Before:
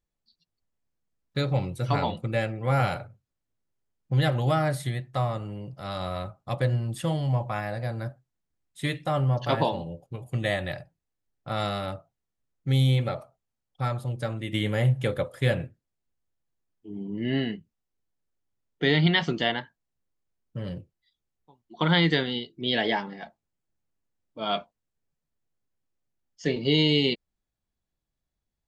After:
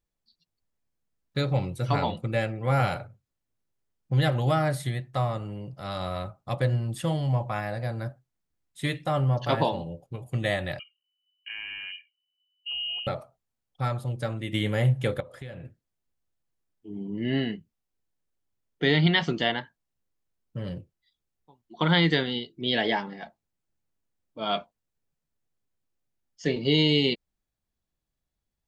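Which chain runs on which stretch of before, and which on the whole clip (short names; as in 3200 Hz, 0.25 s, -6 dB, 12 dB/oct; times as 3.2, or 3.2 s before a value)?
10.79–13.07 formant sharpening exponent 1.5 + compressor 2.5:1, threshold -37 dBFS + inverted band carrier 3000 Hz
15.2–15.65 high shelf 8600 Hz -12 dB + compressor, threshold -37 dBFS
whole clip: dry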